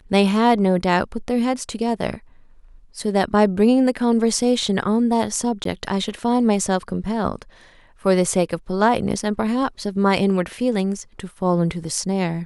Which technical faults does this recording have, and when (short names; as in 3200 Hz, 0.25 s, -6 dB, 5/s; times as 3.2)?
5.64–5.65 gap 13 ms